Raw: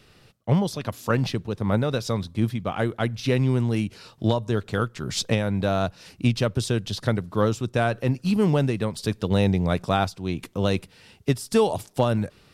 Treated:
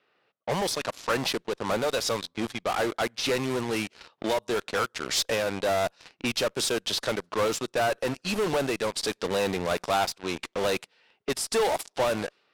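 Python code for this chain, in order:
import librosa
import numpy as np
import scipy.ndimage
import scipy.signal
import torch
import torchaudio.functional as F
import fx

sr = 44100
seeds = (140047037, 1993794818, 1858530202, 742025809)

p1 = scipy.signal.sosfilt(scipy.signal.butter(2, 490.0, 'highpass', fs=sr, output='sos'), x)
p2 = fx.cheby_harmonics(p1, sr, harmonics=(2,), levels_db=(-11,), full_scale_db=-9.5)
p3 = fx.fuzz(p2, sr, gain_db=41.0, gate_db=-40.0)
p4 = p2 + F.gain(torch.from_numpy(p3), -4.0).numpy()
p5 = fx.env_lowpass(p4, sr, base_hz=2300.0, full_db=-15.5)
y = F.gain(torch.from_numpy(p5), -8.5).numpy()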